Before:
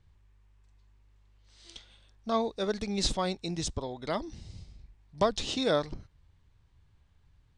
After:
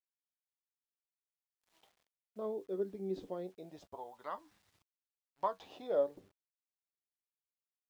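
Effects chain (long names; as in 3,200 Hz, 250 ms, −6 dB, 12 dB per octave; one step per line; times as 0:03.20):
noise reduction from a noise print of the clip's start 11 dB
LFO wah 0.27 Hz 370–1,400 Hz, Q 2.6
wrong playback speed 25 fps video run at 24 fps
flanger 0.44 Hz, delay 9.8 ms, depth 1 ms, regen +55%
bit-depth reduction 12 bits, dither none
level +1 dB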